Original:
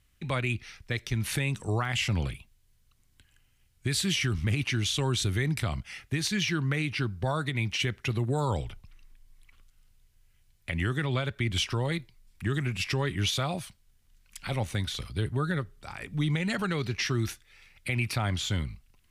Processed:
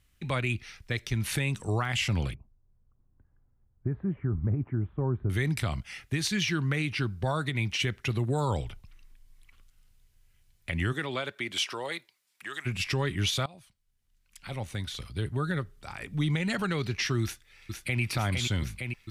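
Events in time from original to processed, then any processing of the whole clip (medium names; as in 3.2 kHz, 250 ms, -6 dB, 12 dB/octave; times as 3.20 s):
2.34–5.30 s: Bessel low-pass 780 Hz, order 6
10.92–12.65 s: high-pass 230 Hz -> 860 Hz
13.46–15.74 s: fade in, from -21 dB
17.23–18.01 s: echo throw 460 ms, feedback 85%, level -4.5 dB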